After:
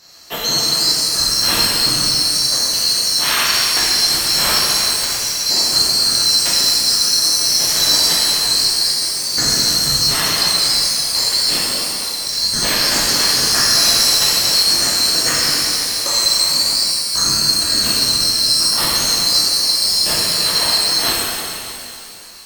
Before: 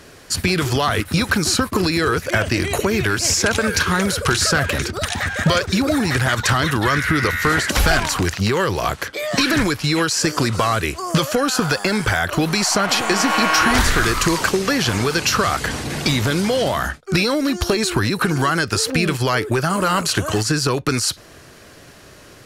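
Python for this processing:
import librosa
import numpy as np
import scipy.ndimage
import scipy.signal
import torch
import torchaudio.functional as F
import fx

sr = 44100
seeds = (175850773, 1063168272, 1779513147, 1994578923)

y = fx.band_swap(x, sr, width_hz=4000)
y = fx.over_compress(y, sr, threshold_db=-25.0, ratio=-0.5, at=(11.59, 12.31))
y = fx.rev_shimmer(y, sr, seeds[0], rt60_s=2.5, semitones=12, shimmer_db=-8, drr_db=-8.5)
y = y * librosa.db_to_amplitude(-6.5)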